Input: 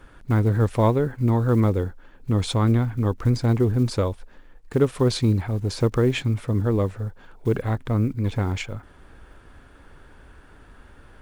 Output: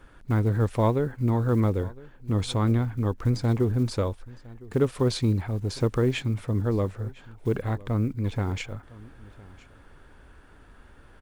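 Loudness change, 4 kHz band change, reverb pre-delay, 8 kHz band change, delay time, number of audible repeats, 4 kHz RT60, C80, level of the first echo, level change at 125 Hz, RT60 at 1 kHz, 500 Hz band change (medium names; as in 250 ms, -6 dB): -3.5 dB, -3.5 dB, no reverb, -3.5 dB, 1009 ms, 1, no reverb, no reverb, -21.5 dB, -3.5 dB, no reverb, -3.5 dB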